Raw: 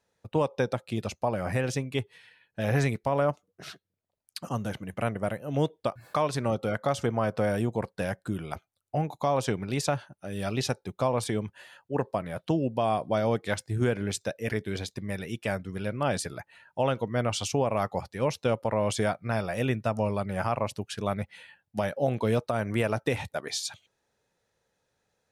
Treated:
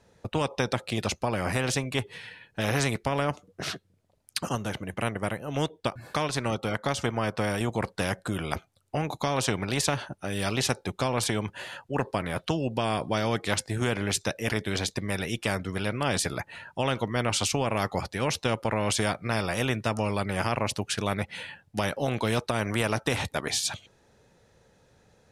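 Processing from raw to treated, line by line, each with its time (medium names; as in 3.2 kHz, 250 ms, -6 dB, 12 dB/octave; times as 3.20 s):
4.55–7.61 s: upward expansion, over -34 dBFS
whole clip: Bessel low-pass 11 kHz, order 8; bass shelf 430 Hz +9 dB; spectrum-flattening compressor 2:1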